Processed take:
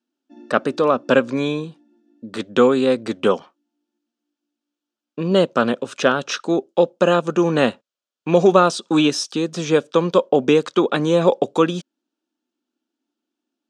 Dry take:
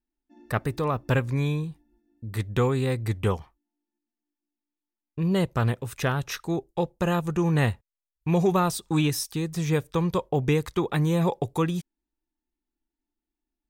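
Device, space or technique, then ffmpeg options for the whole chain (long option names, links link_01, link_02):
television speaker: -af "highpass=frequency=220:width=0.5412,highpass=frequency=220:width=1.3066,equalizer=frequency=240:width_type=q:width=4:gain=5,equalizer=frequency=560:width_type=q:width=4:gain=7,equalizer=frequency=870:width_type=q:width=4:gain=-4,equalizer=frequency=1400:width_type=q:width=4:gain=5,equalizer=frequency=2000:width_type=q:width=4:gain=-9,equalizer=frequency=3100:width_type=q:width=4:gain=4,lowpass=frequency=7000:width=0.5412,lowpass=frequency=7000:width=1.3066,volume=8.5dB"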